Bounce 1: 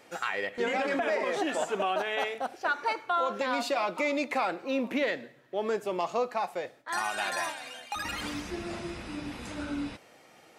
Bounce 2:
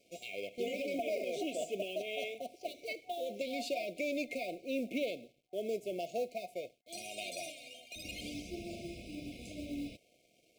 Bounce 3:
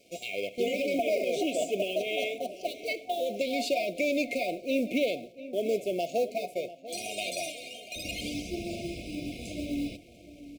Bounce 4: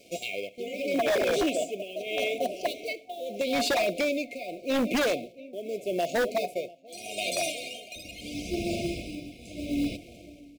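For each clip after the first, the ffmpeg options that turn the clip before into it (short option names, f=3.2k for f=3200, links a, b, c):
-af "acrusher=bits=6:mode=log:mix=0:aa=0.000001,aeval=exprs='sgn(val(0))*max(abs(val(0))-0.00106,0)':c=same,afftfilt=real='re*(1-between(b*sr/4096,740,2100))':imag='im*(1-between(b*sr/4096,740,2100))':win_size=4096:overlap=0.75,volume=-6dB"
-filter_complex "[0:a]asplit=2[a][b];[b]adelay=694,lowpass=f=2.5k:p=1,volume=-15dB,asplit=2[c][d];[d]adelay=694,lowpass=f=2.5k:p=1,volume=0.43,asplit=2[e][f];[f]adelay=694,lowpass=f=2.5k:p=1,volume=0.43,asplit=2[g][h];[h]adelay=694,lowpass=f=2.5k:p=1,volume=0.43[i];[a][c][e][g][i]amix=inputs=5:normalize=0,volume=8dB"
-af "tremolo=f=0.8:d=0.79,aeval=exprs='0.0531*(abs(mod(val(0)/0.0531+3,4)-2)-1)':c=same,volume=6dB"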